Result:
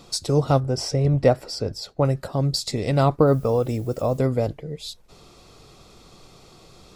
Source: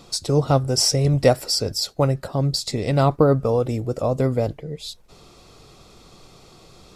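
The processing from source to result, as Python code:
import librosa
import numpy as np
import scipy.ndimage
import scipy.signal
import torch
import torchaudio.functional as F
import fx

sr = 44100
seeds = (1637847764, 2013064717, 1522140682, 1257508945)

y = fx.lowpass(x, sr, hz=1800.0, slope=6, at=(0.6, 2.05))
y = fx.dmg_noise_colour(y, sr, seeds[0], colour='blue', level_db=-54.0, at=(3.26, 4.17), fade=0.02)
y = F.gain(torch.from_numpy(y), -1.0).numpy()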